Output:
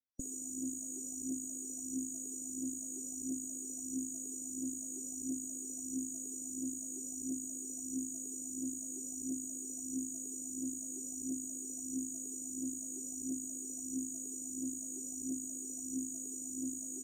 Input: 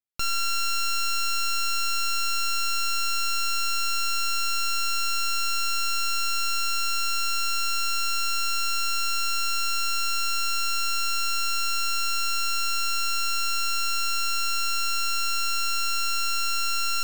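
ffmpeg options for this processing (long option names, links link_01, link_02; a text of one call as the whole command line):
ffmpeg -i in.wav -filter_complex "[0:a]afftdn=noise_reduction=13:noise_floor=-37,aphaser=in_gain=1:out_gain=1:delay=2.6:decay=0.7:speed=1.5:type=triangular,afftfilt=real='re*(1-between(b*sr/4096,800,5800))':imag='im*(1-between(b*sr/4096,800,5800))':win_size=4096:overlap=0.75,asplit=3[link_01][link_02][link_03];[link_01]bandpass=frequency=270:width_type=q:width=8,volume=0dB[link_04];[link_02]bandpass=frequency=2290:width_type=q:width=8,volume=-6dB[link_05];[link_03]bandpass=frequency=3010:width_type=q:width=8,volume=-9dB[link_06];[link_04][link_05][link_06]amix=inputs=3:normalize=0,aresample=32000,aresample=44100,volume=17.5dB" out.wav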